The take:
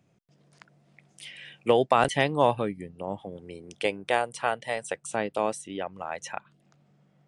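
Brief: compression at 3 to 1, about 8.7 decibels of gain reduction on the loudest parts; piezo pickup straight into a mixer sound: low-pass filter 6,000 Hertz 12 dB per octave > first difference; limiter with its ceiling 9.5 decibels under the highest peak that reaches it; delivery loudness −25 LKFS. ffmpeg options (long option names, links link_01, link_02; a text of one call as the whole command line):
ffmpeg -i in.wav -af "acompressor=threshold=-27dB:ratio=3,alimiter=limit=-22.5dB:level=0:latency=1,lowpass=6000,aderivative,volume=26dB" out.wav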